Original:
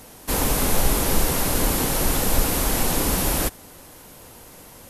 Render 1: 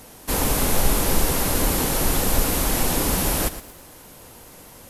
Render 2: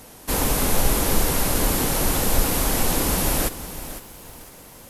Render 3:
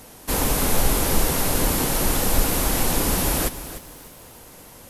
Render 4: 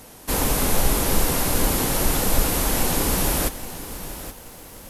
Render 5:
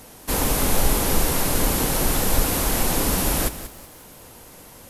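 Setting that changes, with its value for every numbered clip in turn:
bit-crushed delay, time: 116 ms, 507 ms, 300 ms, 825 ms, 187 ms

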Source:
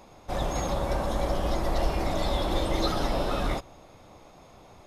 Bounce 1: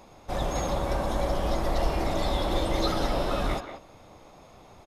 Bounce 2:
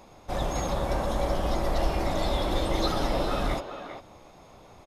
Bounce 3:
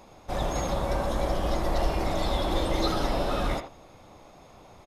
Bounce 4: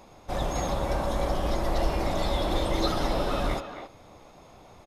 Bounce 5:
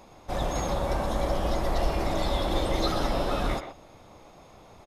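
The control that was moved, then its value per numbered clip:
speakerphone echo, time: 180 ms, 400 ms, 80 ms, 270 ms, 120 ms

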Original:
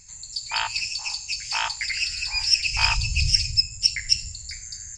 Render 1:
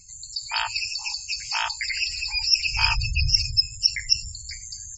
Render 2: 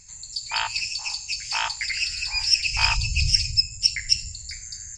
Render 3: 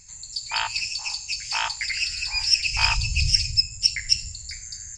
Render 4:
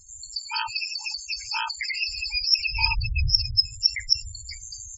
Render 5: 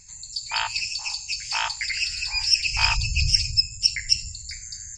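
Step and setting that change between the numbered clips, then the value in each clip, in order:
spectral gate, under each frame's peak: -20 dB, -45 dB, -60 dB, -10 dB, -35 dB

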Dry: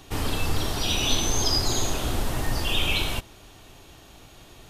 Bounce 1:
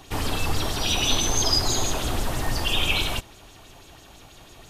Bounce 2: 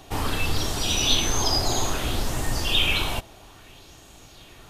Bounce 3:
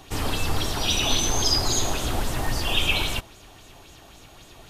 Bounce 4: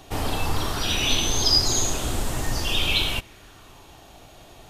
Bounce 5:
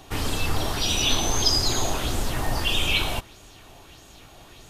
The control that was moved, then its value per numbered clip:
sweeping bell, rate: 6.1 Hz, 0.61 Hz, 3.7 Hz, 0.23 Hz, 1.6 Hz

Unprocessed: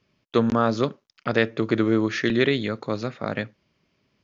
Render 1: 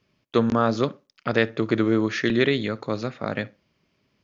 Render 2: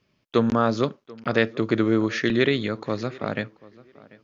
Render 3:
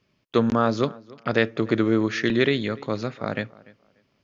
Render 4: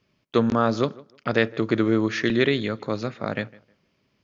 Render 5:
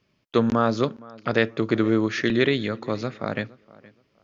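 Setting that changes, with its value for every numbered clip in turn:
tape echo, time: 62 ms, 738 ms, 293 ms, 157 ms, 468 ms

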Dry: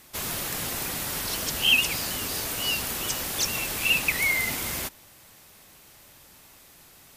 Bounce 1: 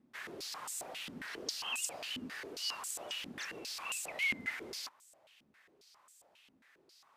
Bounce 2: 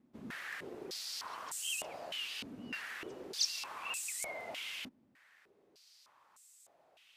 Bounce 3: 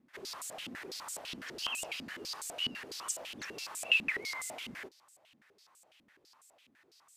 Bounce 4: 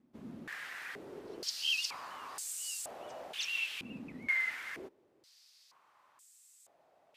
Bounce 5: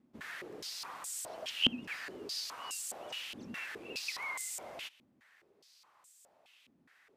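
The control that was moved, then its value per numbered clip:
step-sequenced band-pass, rate: 7.4 Hz, 3.3 Hz, 12 Hz, 2.1 Hz, 4.8 Hz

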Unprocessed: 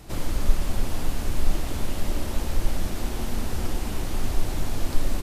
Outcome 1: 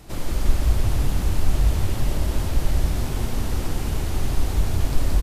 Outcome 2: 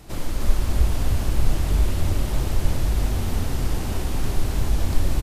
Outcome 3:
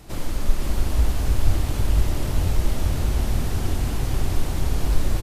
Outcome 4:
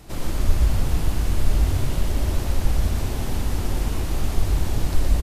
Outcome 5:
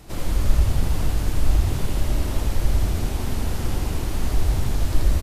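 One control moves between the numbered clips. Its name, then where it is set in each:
frequency-shifting echo, time: 173 ms, 304 ms, 487 ms, 118 ms, 81 ms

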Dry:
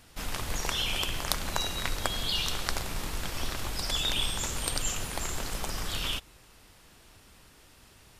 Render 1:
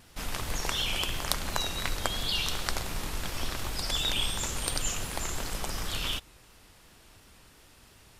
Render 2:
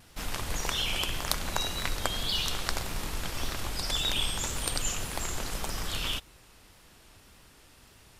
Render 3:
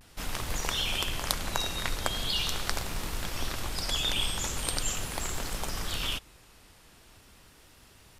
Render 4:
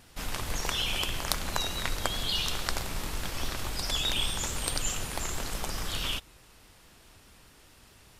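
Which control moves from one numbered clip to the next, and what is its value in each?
vibrato, rate: 2.8 Hz, 1.8 Hz, 0.42 Hz, 4.7 Hz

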